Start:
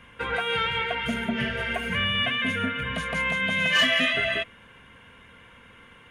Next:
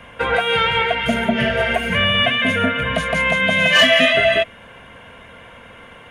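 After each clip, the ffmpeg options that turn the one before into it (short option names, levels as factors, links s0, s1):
-filter_complex "[0:a]equalizer=f=650:t=o:w=0.64:g=11.5,acrossover=split=380|1400[s0][s1][s2];[s1]alimiter=limit=0.1:level=0:latency=1:release=329[s3];[s0][s3][s2]amix=inputs=3:normalize=0,volume=2.51"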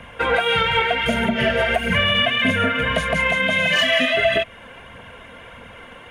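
-af "aphaser=in_gain=1:out_gain=1:delay=4.2:decay=0.37:speed=1.6:type=triangular,alimiter=limit=0.376:level=0:latency=1:release=178"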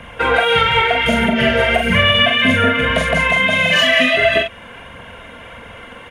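-filter_complex "[0:a]asplit=2[s0][s1];[s1]adelay=43,volume=0.562[s2];[s0][s2]amix=inputs=2:normalize=0,volume=1.5"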